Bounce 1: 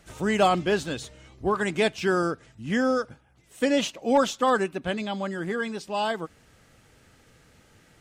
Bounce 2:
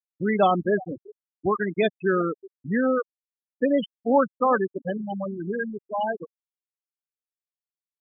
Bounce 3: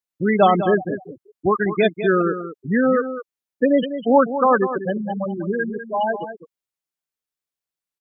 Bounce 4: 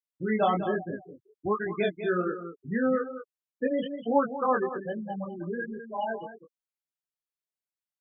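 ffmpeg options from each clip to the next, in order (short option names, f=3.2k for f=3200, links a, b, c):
-af "aecho=1:1:364:0.158,afftfilt=real='re*gte(hypot(re,im),0.158)':imag='im*gte(hypot(re,im),0.158)':win_size=1024:overlap=0.75,volume=1.5dB"
-af "aecho=1:1:200:0.282,volume=5dB"
-af "flanger=delay=17.5:depth=6:speed=1.2,volume=-7dB"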